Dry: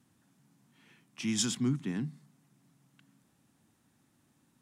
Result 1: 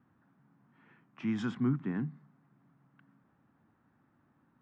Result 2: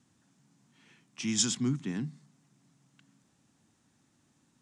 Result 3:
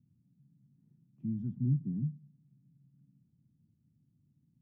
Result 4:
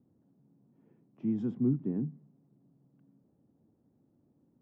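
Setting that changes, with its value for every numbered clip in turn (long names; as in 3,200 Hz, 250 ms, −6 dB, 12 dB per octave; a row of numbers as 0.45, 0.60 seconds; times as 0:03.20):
low-pass with resonance, frequency: 1,400, 7,100, 150, 480 Hertz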